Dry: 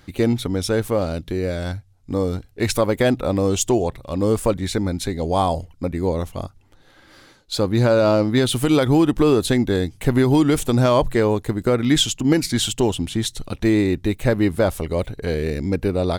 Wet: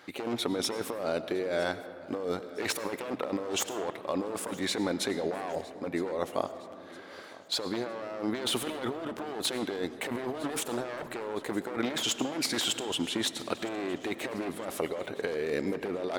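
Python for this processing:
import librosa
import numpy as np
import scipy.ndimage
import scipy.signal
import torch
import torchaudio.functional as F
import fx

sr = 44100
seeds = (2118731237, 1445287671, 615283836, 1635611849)

p1 = np.minimum(x, 2.0 * 10.0 ** (-18.5 / 20.0) - x)
p2 = scipy.signal.sosfilt(scipy.signal.butter(2, 430.0, 'highpass', fs=sr, output='sos'), p1)
p3 = fx.high_shelf(p2, sr, hz=3900.0, db=-10.0)
p4 = fx.over_compress(p3, sr, threshold_db=-31.0, ratio=-1.0)
p5 = p4 + fx.echo_feedback(p4, sr, ms=962, feedback_pct=50, wet_db=-20.5, dry=0)
p6 = fx.rev_freeverb(p5, sr, rt60_s=2.5, hf_ratio=0.4, predelay_ms=60, drr_db=12.0)
y = p6 * 10.0 ** (-2.0 / 20.0)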